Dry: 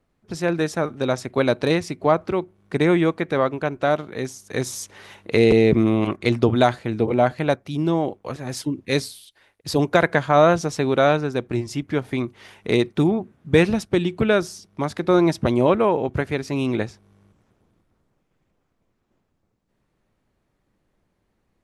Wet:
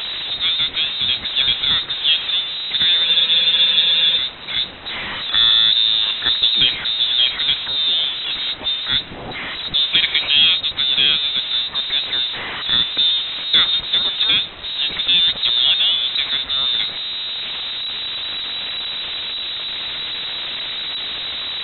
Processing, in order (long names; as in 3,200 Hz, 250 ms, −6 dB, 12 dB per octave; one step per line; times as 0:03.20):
converter with a step at zero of −19 dBFS
voice inversion scrambler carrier 3,900 Hz
frozen spectrum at 0:03.07, 1.10 s
level −1 dB